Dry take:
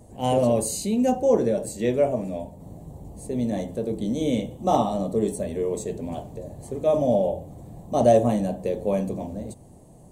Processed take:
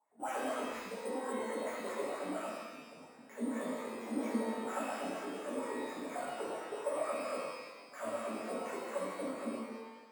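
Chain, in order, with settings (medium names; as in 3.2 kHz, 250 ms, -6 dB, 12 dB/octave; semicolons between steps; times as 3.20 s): local Wiener filter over 9 samples; gate -38 dBFS, range -17 dB; high-pass 97 Hz 24 dB/octave; RIAA curve recording; compression 6:1, threshold -35 dBFS, peak gain reduction 19 dB; one-sided clip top -42.5 dBFS; flange 0.89 Hz, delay 6.1 ms, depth 7.7 ms, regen +65%; wah-wah 4.3 Hz 230–2200 Hz, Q 8.9; sample-and-hold 5×; pitch-shifted reverb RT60 1.1 s, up +12 st, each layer -8 dB, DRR -10 dB; trim +9 dB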